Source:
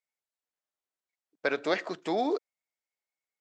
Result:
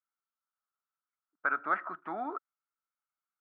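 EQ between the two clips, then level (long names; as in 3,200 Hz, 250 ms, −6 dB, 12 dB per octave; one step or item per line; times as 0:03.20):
high-pass filter 280 Hz 6 dB per octave
transistor ladder low-pass 1,400 Hz, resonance 80%
parametric band 470 Hz −14.5 dB 0.74 octaves
+8.0 dB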